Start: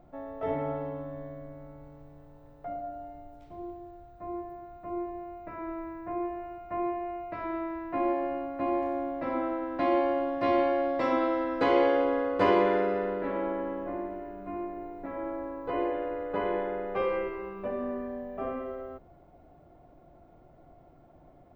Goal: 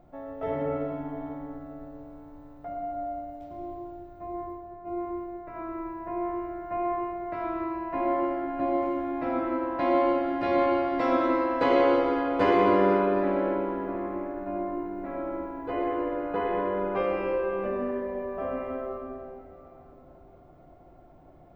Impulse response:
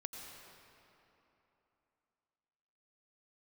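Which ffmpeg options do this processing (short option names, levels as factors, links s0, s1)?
-filter_complex "[0:a]asplit=3[s0][s1][s2];[s0]afade=t=out:st=4.34:d=0.02[s3];[s1]agate=range=0.0224:threshold=0.0141:ratio=3:detection=peak,afade=t=in:st=4.34:d=0.02,afade=t=out:st=5.54:d=0.02[s4];[s2]afade=t=in:st=5.54:d=0.02[s5];[s3][s4][s5]amix=inputs=3:normalize=0[s6];[1:a]atrim=start_sample=2205[s7];[s6][s7]afir=irnorm=-1:irlink=0,volume=1.68"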